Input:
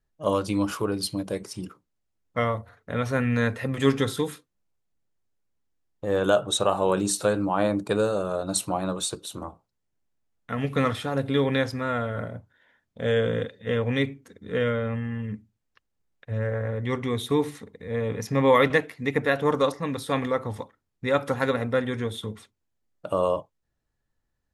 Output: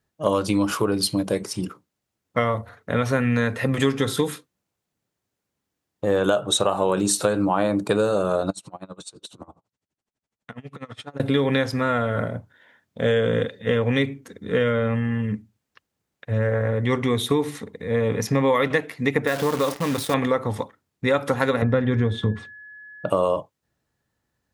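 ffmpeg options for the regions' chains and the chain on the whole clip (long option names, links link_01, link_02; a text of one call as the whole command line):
ffmpeg -i in.wav -filter_complex "[0:a]asettb=1/sr,asplit=3[link_01][link_02][link_03];[link_01]atrim=end=8.504[link_04];[link_02]atrim=start=8.5:end=11.2,asetpts=PTS-STARTPTS,afade=type=in:duration=0.004:curve=qsin,afade=type=out:start_time=2.696:duration=0.004:curve=qsin,lowpass=frequency=9300:width=0.5412,lowpass=frequency=9300:width=1.3066,acompressor=threshold=-40dB:ratio=3:attack=3.2:release=140:knee=1:detection=peak,aeval=exprs='val(0)*pow(10,-25*(0.5-0.5*cos(2*PI*12*n/s))/20)':channel_layout=same[link_05];[link_03]atrim=start=11.196[link_06];[link_04][link_05]acrossfade=duration=0.004:curve1=hsin:curve2=qsin[link_07];[link_07][link_06]acrossfade=duration=0.004:curve1=qsin:curve2=hsin,asettb=1/sr,asplit=3[link_08][link_09][link_10];[link_08]atrim=end=19.274[link_11];[link_09]atrim=start=19.27:end=20.14,asetpts=PTS-STARTPTS,afade=type=in:duration=0.004:curve=qsin,afade=type=out:start_time=0.866:duration=0.004:curve=qsin,acompressor=threshold=-27dB:ratio=2:attack=3.2:release=140:knee=1:detection=peak,acrusher=bits=7:dc=4:mix=0:aa=0.000001[link_12];[link_10]atrim=start=20.136[link_13];[link_11][link_12]acrossfade=duration=0.004:curve1=hsin:curve2=qsin[link_14];[link_14][link_13]acrossfade=duration=0.004:curve1=qsin:curve2=hsin,asettb=1/sr,asplit=3[link_15][link_16][link_17];[link_15]atrim=end=21.624[link_18];[link_16]atrim=start=21.62:end=23.1,asetpts=PTS-STARTPTS,afade=type=in:duration=0.004:curve=qsin,afade=type=out:start_time=1.476:duration=0.004:curve=qsin,lowpass=7800,aemphasis=mode=reproduction:type=bsi,aeval=exprs='val(0)+0.00398*sin(2*PI*1700*n/s)':channel_layout=same[link_19];[link_17]atrim=start=23.096[link_20];[link_18][link_19]acrossfade=duration=0.004:curve1=hsin:curve2=qsin[link_21];[link_21][link_20]acrossfade=duration=0.004:curve1=qsin:curve2=hsin,highpass=89,acompressor=threshold=-24dB:ratio=6,volume=7.5dB" out.wav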